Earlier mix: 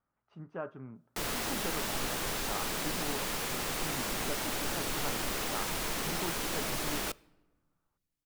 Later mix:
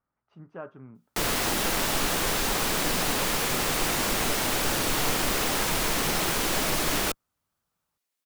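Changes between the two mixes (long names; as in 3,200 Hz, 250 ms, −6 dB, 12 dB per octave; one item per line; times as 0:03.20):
background +9.0 dB
reverb: off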